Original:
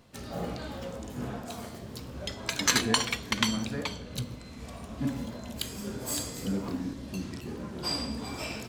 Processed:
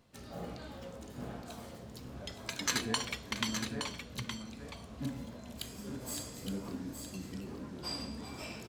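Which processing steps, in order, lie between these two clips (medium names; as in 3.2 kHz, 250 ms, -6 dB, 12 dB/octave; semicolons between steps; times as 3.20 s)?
delay 868 ms -7 dB; trim -8 dB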